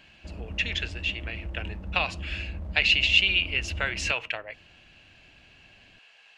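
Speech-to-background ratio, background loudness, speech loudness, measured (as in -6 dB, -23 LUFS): 13.5 dB, -39.0 LUFS, -25.5 LUFS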